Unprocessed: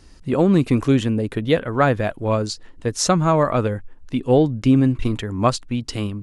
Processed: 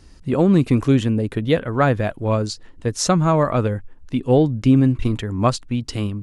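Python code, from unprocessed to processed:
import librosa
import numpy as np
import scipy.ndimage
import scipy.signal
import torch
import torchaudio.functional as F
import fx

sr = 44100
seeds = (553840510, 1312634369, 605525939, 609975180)

y = fx.peak_eq(x, sr, hz=88.0, db=3.5, octaves=2.9)
y = y * librosa.db_to_amplitude(-1.0)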